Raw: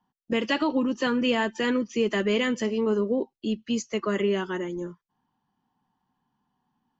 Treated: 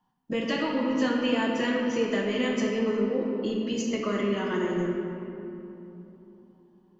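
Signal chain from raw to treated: compression, threshold -27 dBFS, peak gain reduction 7.5 dB; simulated room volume 140 m³, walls hard, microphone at 0.53 m

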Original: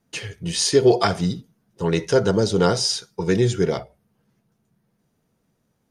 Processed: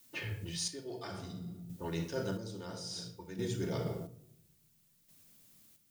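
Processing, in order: treble shelf 3.5 kHz +5 dB; level-controlled noise filter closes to 660 Hz, open at -18 dBFS; simulated room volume 2300 m³, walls furnished, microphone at 2.6 m; reverse; compression 10:1, threshold -25 dBFS, peak gain reduction 17.5 dB; reverse; added noise blue -55 dBFS; square tremolo 0.59 Hz, depth 60%, duty 40%; trim -7.5 dB

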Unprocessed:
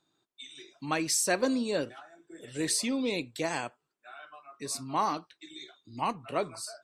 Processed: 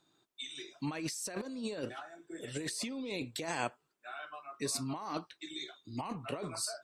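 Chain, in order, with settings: compressor with a negative ratio -36 dBFS, ratio -1; trim -2 dB

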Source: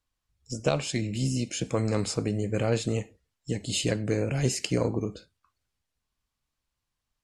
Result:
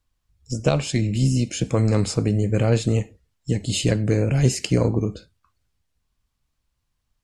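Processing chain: bass shelf 190 Hz +8.5 dB; trim +3.5 dB

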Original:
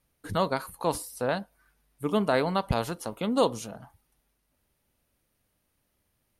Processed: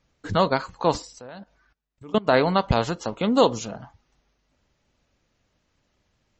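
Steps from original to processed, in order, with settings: 1.13–2.28 s: level held to a coarse grid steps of 23 dB; trim +6.5 dB; MP3 32 kbps 32 kHz

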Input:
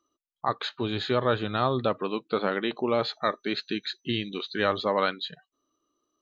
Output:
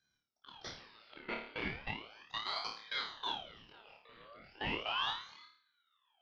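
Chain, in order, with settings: tracing distortion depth 0.071 ms; vibrato 4.4 Hz 45 cents; in parallel at -0.5 dB: compressor with a negative ratio -44 dBFS, ratio -0.5; on the sum: band-pass sweep 2.6 kHz -> 1.1 kHz, 1.10–4.58 s; chorus 1.2 Hz, delay 15 ms, depth 7.9 ms; saturation -32 dBFS, distortion -11 dB; level held to a coarse grid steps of 21 dB; distance through air 400 m; on a send: flutter echo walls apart 4.7 m, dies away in 0.53 s; on the sum: ring modulator with a swept carrier 1.8 kHz, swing 55%, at 0.36 Hz; trim +8.5 dB

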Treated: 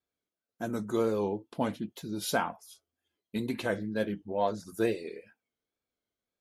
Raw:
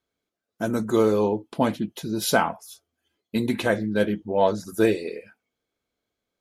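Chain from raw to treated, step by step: wow and flutter 70 cents; trim -8.5 dB

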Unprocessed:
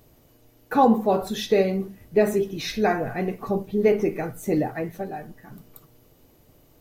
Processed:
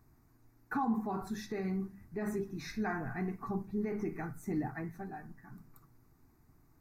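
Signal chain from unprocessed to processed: treble shelf 6.7 kHz -12 dB; hum notches 50/100/150/200 Hz; peak limiter -15.5 dBFS, peak gain reduction 7.5 dB; static phaser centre 1.3 kHz, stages 4; trim -5.5 dB

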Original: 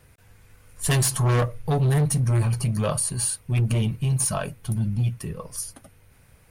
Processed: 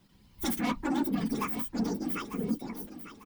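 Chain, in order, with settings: phase randomisation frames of 50 ms; wow and flutter 20 cents; speed mistake 7.5 ips tape played at 15 ips; on a send: feedback delay 897 ms, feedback 34%, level -12 dB; on the sum: trim -8.5 dB

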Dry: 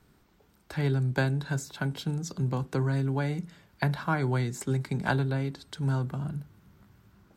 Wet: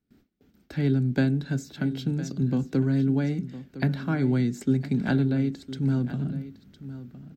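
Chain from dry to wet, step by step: gate with hold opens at -51 dBFS; fifteen-band graphic EQ 250 Hz +12 dB, 1 kHz -12 dB, 10 kHz -12 dB; delay 1009 ms -14.5 dB

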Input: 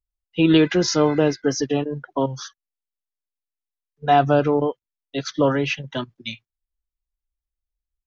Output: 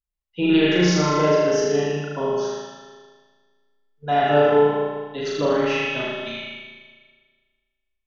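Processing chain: flutter echo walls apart 6.7 m, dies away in 1.3 s; spring tank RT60 1.6 s, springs 34 ms, chirp 50 ms, DRR -4 dB; trim -7 dB

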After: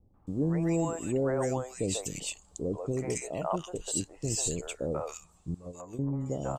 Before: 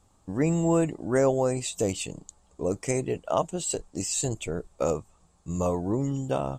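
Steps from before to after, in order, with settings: 5.54–5.99 s: gate -22 dBFS, range -22 dB; in parallel at -0.5 dB: compression, threshold -34 dBFS, peak gain reduction 15 dB; on the sum: three bands offset in time lows, mids, highs 140/270 ms, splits 560/1800 Hz; trim -5 dB

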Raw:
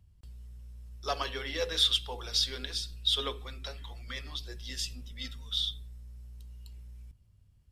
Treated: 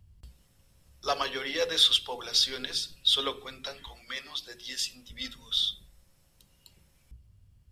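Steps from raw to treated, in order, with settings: 3.87–5.10 s: bass shelf 290 Hz -10 dB; hum notches 60/120/180/240/300/360/420 Hz; trim +4 dB

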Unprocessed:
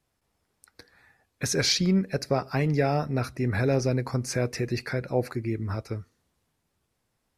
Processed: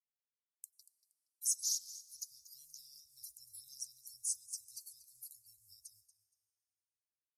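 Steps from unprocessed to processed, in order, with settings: coarse spectral quantiser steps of 30 dB; pre-emphasis filter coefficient 0.97; expander -58 dBFS; inverse Chebyshev band-stop 270–1900 Hz, stop band 70 dB; bass shelf 470 Hz -9 dB; in parallel at -3 dB: compression, threshold -54 dBFS, peak gain reduction 21 dB; on the sum: feedback delay 235 ms, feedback 23%, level -15.5 dB; on a send at -21.5 dB: reverberation RT60 3.2 s, pre-delay 83 ms; on the sum: trim +2 dB

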